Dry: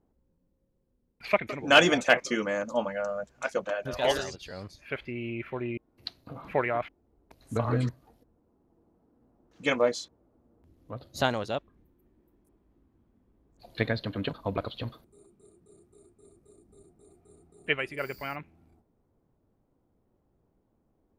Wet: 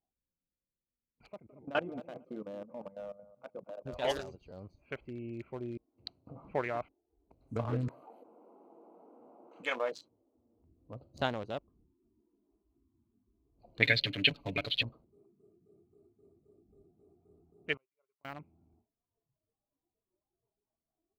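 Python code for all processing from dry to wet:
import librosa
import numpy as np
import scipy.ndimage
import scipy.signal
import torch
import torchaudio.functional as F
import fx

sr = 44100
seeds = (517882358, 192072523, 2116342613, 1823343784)

y = fx.chain(x, sr, fx.level_steps(step_db=16),
    fx.spacing_loss(db_at_10k=43),
    fx.echo_feedback(ms=227, feedback_pct=16, wet_db=-16.5), at=(1.27, 3.86))
y = fx.chain(y, sr, fx.highpass(hz=650.0, slope=12),
    fx.peak_eq(hz=5300.0, db=-14.5, octaves=0.43),
    fx.env_flatten(amount_pct=50), at=(7.88, 9.92))
y = fx.chain(y, sr, fx.high_shelf_res(hz=1600.0, db=12.5, q=3.0),
    fx.comb(ms=7.0, depth=0.74), at=(13.82, 14.83))
y = fx.chain(y, sr, fx.highpass(hz=120.0, slope=12),
    fx.peak_eq(hz=1100.0, db=8.5, octaves=0.54),
    fx.gate_flip(shuts_db=-31.0, range_db=-38), at=(17.74, 18.25))
y = fx.wiener(y, sr, points=25)
y = fx.noise_reduce_blind(y, sr, reduce_db=18)
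y = y * librosa.db_to_amplitude(-6.0)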